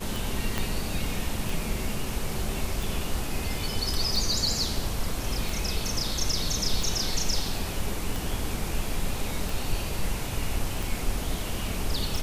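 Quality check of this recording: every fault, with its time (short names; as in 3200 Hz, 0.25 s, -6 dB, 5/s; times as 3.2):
tick 45 rpm
0.58 pop -12 dBFS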